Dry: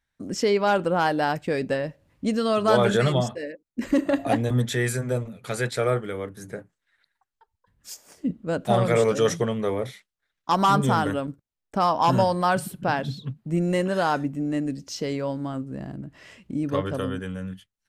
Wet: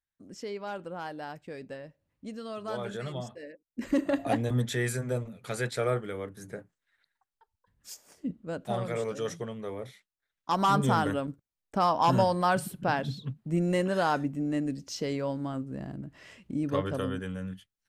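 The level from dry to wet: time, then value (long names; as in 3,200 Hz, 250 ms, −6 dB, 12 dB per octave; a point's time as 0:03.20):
0:03.00 −16 dB
0:03.95 −5 dB
0:07.92 −5 dB
0:08.94 −12 dB
0:09.61 −12 dB
0:10.90 −3.5 dB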